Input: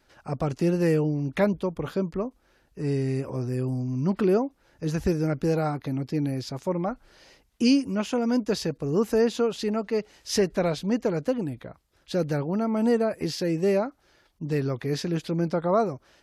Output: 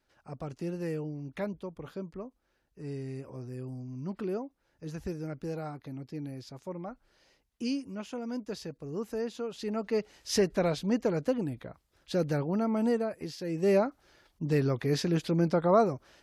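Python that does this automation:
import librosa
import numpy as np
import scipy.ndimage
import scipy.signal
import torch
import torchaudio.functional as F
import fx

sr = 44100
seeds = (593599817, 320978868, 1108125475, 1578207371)

y = fx.gain(x, sr, db=fx.line((9.43, -12.0), (9.9, -3.0), (12.71, -3.0), (13.38, -11.5), (13.75, -0.5)))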